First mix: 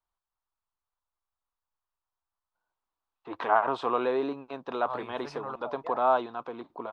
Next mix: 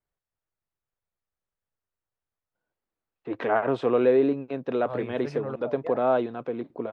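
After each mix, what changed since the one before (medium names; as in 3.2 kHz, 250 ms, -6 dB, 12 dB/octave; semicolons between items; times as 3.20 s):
master: add ten-band graphic EQ 125 Hz +12 dB, 250 Hz +6 dB, 500 Hz +9 dB, 1 kHz -11 dB, 2 kHz +7 dB, 4 kHz -4 dB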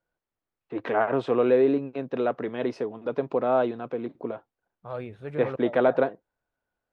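first voice: entry -2.55 s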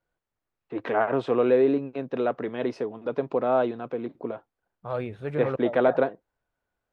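second voice +4.5 dB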